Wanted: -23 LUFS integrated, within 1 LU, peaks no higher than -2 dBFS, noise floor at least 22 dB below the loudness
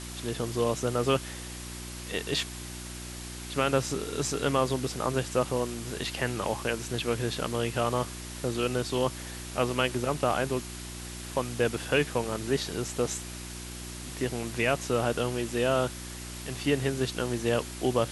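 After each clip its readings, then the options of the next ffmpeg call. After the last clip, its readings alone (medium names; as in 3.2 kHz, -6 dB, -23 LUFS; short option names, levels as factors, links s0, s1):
hum 60 Hz; highest harmonic 360 Hz; hum level -39 dBFS; noise floor -40 dBFS; noise floor target -52 dBFS; loudness -30.0 LUFS; peak level -11.0 dBFS; loudness target -23.0 LUFS
-> -af "bandreject=f=60:t=h:w=4,bandreject=f=120:t=h:w=4,bandreject=f=180:t=h:w=4,bandreject=f=240:t=h:w=4,bandreject=f=300:t=h:w=4,bandreject=f=360:t=h:w=4"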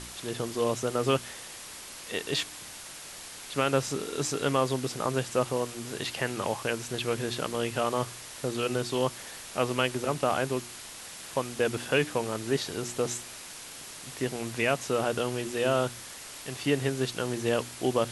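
hum not found; noise floor -44 dBFS; noise floor target -52 dBFS
-> -af "afftdn=nr=8:nf=-44"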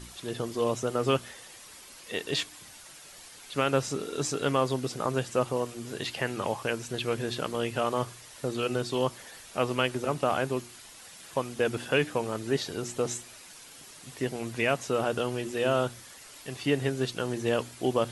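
noise floor -49 dBFS; noise floor target -52 dBFS
-> -af "afftdn=nr=6:nf=-49"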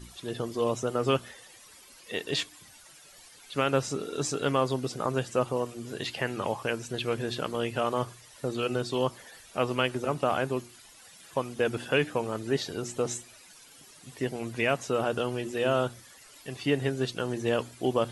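noise floor -53 dBFS; loudness -30.5 LUFS; peak level -10.5 dBFS; loudness target -23.0 LUFS
-> -af "volume=2.37"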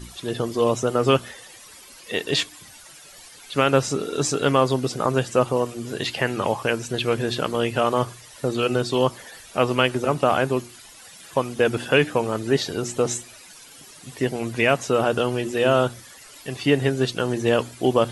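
loudness -23.0 LUFS; peak level -3.0 dBFS; noise floor -46 dBFS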